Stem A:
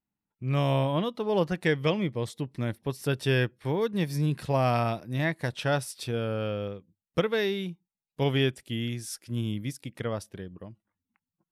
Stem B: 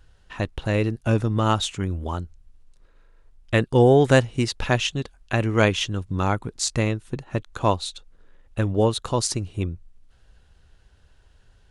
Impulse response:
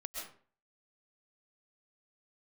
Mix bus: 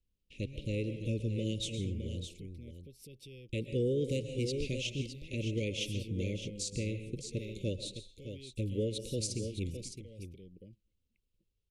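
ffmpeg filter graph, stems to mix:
-filter_complex "[0:a]acompressor=threshold=-31dB:ratio=6,alimiter=level_in=14dB:limit=-24dB:level=0:latency=1:release=376,volume=-14dB,volume=-4.5dB[link_01];[1:a]agate=range=-17dB:threshold=-47dB:ratio=16:detection=peak,volume=-13dB,asplit=3[link_02][link_03][link_04];[link_03]volume=-5.5dB[link_05];[link_04]volume=-7.5dB[link_06];[2:a]atrim=start_sample=2205[link_07];[link_05][link_07]afir=irnorm=-1:irlink=0[link_08];[link_06]aecho=0:1:613:1[link_09];[link_01][link_02][link_08][link_09]amix=inputs=4:normalize=0,asuperstop=centerf=1100:order=20:qfactor=0.68,alimiter=limit=-24dB:level=0:latency=1:release=174"

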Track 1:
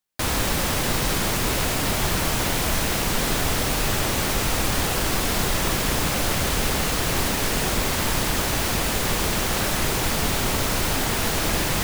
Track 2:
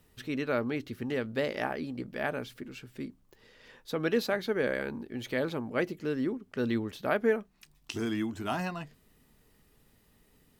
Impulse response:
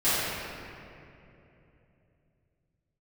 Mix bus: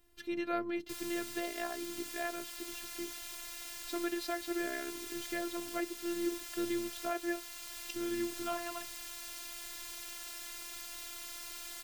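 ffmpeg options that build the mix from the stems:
-filter_complex "[0:a]tiltshelf=frequency=1100:gain=-9,asoftclip=type=tanh:threshold=-20dB,adelay=700,volume=-18.5dB[link_01];[1:a]volume=-0.5dB[link_02];[link_01][link_02]amix=inputs=2:normalize=0,afftfilt=real='hypot(re,im)*cos(PI*b)':imag='0':win_size=512:overlap=0.75,alimiter=limit=-20dB:level=0:latency=1:release=500"

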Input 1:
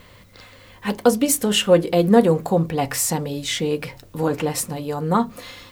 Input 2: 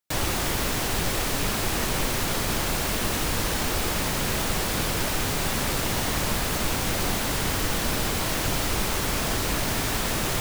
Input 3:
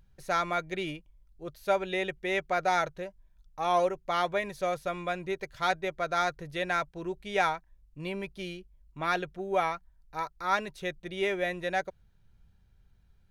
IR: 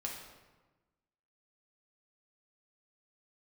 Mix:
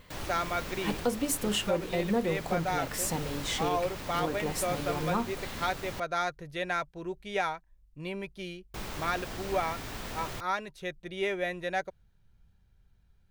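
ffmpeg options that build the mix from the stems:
-filter_complex "[0:a]volume=-8.5dB[link_01];[1:a]equalizer=frequency=11000:width_type=o:width=1.5:gain=-7,volume=-12dB,asplit=3[link_02][link_03][link_04];[link_02]atrim=end=6,asetpts=PTS-STARTPTS,afade=type=out:start_time=5.996:duration=0.004:curve=hsin[link_05];[link_03]atrim=start=6:end=8.74,asetpts=PTS-STARTPTS,volume=0[link_06];[link_04]atrim=start=8.74,asetpts=PTS-STARTPTS,afade=type=in:duration=0.004:curve=hsin[link_07];[link_05][link_06][link_07]concat=n=3:v=0:a=1[link_08];[2:a]volume=-1.5dB[link_09];[link_01][link_08][link_09]amix=inputs=3:normalize=0,alimiter=limit=-18.5dB:level=0:latency=1:release=473"

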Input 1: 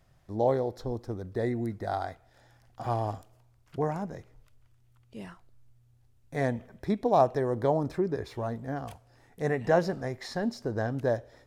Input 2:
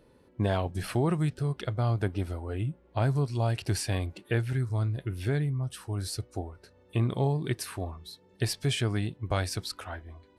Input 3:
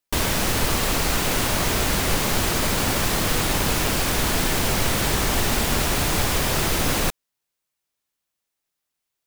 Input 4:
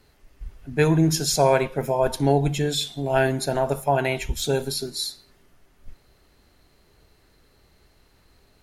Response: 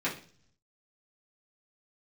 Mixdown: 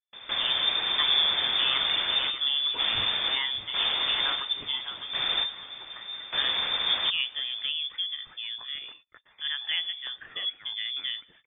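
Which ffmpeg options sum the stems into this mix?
-filter_complex "[0:a]lowshelf=frequency=68:gain=-10,volume=2.5dB,asplit=2[link_01][link_02];[1:a]highpass=frequency=1100:width=0.5412,highpass=frequency=1100:width=1.3066,acompressor=threshold=-42dB:ratio=4,adelay=1650,volume=-2.5dB[link_03];[2:a]volume=-4dB,asplit=2[link_04][link_05];[link_05]volume=-22dB[link_06];[3:a]adelay=200,volume=-4dB,asplit=2[link_07][link_08];[link_08]volume=-10dB[link_09];[link_02]apad=whole_len=408461[link_10];[link_04][link_10]sidechaingate=range=-16dB:threshold=-55dB:ratio=16:detection=peak[link_11];[link_06][link_09]amix=inputs=2:normalize=0,aecho=0:1:606|1212|1818|2424:1|0.28|0.0784|0.022[link_12];[link_01][link_03][link_11][link_07][link_12]amix=inputs=5:normalize=0,agate=range=-30dB:threshold=-47dB:ratio=16:detection=peak,equalizer=frequency=590:width=0.99:gain=-14,lowpass=frequency=3100:width_type=q:width=0.5098,lowpass=frequency=3100:width_type=q:width=0.6013,lowpass=frequency=3100:width_type=q:width=0.9,lowpass=frequency=3100:width_type=q:width=2.563,afreqshift=-3600"

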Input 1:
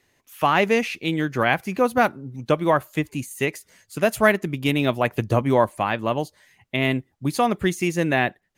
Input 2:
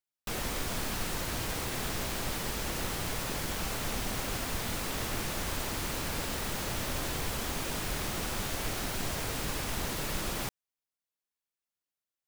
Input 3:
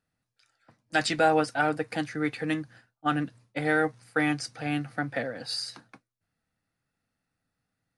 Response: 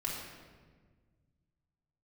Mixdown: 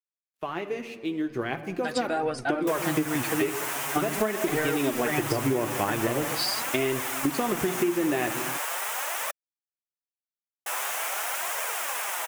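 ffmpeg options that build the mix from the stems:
-filter_complex "[0:a]equalizer=frequency=370:width_type=o:width=0.76:gain=10.5,agate=range=-33dB:threshold=-39dB:ratio=3:detection=peak,aeval=exprs='sgn(val(0))*max(abs(val(0))-0.00668,0)':channel_layout=same,volume=-9dB,asplit=2[link_01][link_02];[link_02]volume=-16dB[link_03];[1:a]highpass=frequency=660:width=0.5412,highpass=frequency=660:width=1.3066,equalizer=frequency=4300:width_type=o:width=0.73:gain=-12.5,adelay=2400,volume=0.5dB,asplit=3[link_04][link_05][link_06];[link_04]atrim=end=9.31,asetpts=PTS-STARTPTS,afade=type=out:start_time=9.306:duration=0.004:curve=hsin[link_07];[link_05]atrim=start=9.31:end=10.66,asetpts=PTS-STARTPTS,volume=0[link_08];[link_06]atrim=start=10.66,asetpts=PTS-STARTPTS,afade=type=in:duration=0.004:curve=hsin[link_09];[link_07][link_08][link_09]concat=n=3:v=0:a=1[link_10];[2:a]adelay=900,volume=-2.5dB[link_11];[link_01][link_11]amix=inputs=2:normalize=0,agate=range=-7dB:threshold=-42dB:ratio=16:detection=peak,acompressor=threshold=-27dB:ratio=6,volume=0dB[link_12];[3:a]atrim=start_sample=2205[link_13];[link_03][link_13]afir=irnorm=-1:irlink=0[link_14];[link_10][link_12][link_14]amix=inputs=3:normalize=0,dynaudnorm=framelen=320:gausssize=13:maxgain=12dB,flanger=delay=1.6:depth=8.6:regen=34:speed=0.43:shape=triangular,acompressor=threshold=-22dB:ratio=6"

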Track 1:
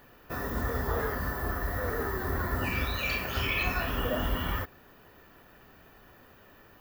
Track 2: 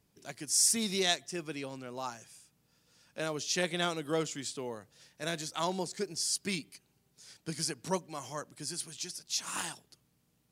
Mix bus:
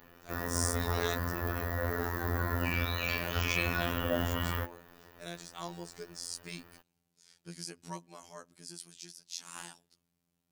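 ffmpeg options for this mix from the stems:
ffmpeg -i stem1.wav -i stem2.wav -filter_complex "[0:a]volume=1.5dB[link_01];[1:a]volume=-5.5dB[link_02];[link_01][link_02]amix=inputs=2:normalize=0,afftfilt=real='hypot(re,im)*cos(PI*b)':imag='0':win_size=2048:overlap=0.75" out.wav

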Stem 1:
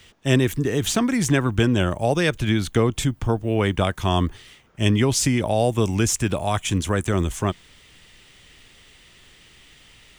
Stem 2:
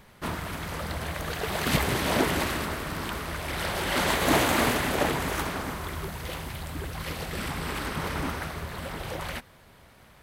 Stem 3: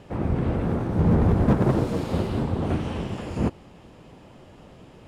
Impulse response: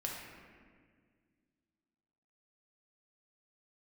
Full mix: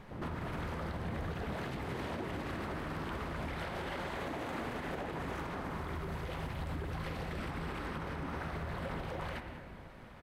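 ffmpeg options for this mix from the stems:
-filter_complex "[1:a]lowpass=frequency=1600:poles=1,acompressor=threshold=-34dB:ratio=6,volume=-0.5dB,asplit=3[link_01][link_02][link_03];[link_02]volume=-5.5dB[link_04];[link_03]volume=-15.5dB[link_05];[2:a]volume=-16dB[link_06];[3:a]atrim=start_sample=2205[link_07];[link_04][link_07]afir=irnorm=-1:irlink=0[link_08];[link_05]aecho=0:1:195:1[link_09];[link_01][link_06][link_08][link_09]amix=inputs=4:normalize=0,alimiter=level_in=6.5dB:limit=-24dB:level=0:latency=1:release=97,volume=-6.5dB"

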